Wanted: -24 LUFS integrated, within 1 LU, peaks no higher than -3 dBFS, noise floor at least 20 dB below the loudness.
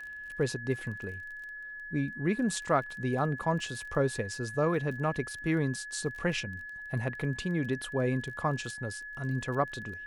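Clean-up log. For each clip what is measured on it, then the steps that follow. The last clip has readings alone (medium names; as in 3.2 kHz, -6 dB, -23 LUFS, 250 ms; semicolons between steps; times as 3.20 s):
tick rate 20 per s; steady tone 1.7 kHz; tone level -40 dBFS; loudness -32.5 LUFS; peak level -13.5 dBFS; loudness target -24.0 LUFS
-> de-click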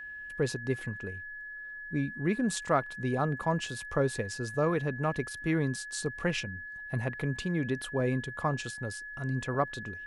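tick rate 0 per s; steady tone 1.7 kHz; tone level -40 dBFS
-> band-stop 1.7 kHz, Q 30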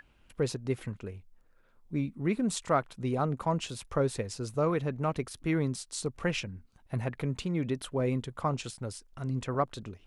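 steady tone not found; loudness -32.5 LUFS; peak level -14.0 dBFS; loudness target -24.0 LUFS
-> trim +8.5 dB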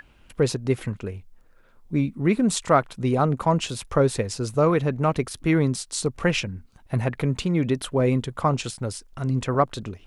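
loudness -24.0 LUFS; peak level -5.5 dBFS; noise floor -55 dBFS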